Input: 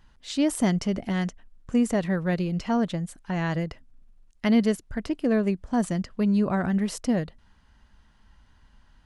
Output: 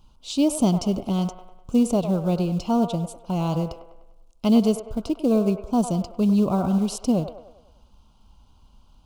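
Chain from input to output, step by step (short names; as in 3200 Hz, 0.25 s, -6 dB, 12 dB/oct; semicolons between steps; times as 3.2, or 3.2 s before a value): in parallel at -7.5 dB: short-mantissa float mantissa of 2-bit; on the sum: Butterworth band-stop 1800 Hz, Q 1.2; band-limited delay 0.1 s, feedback 49%, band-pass 1000 Hz, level -7 dB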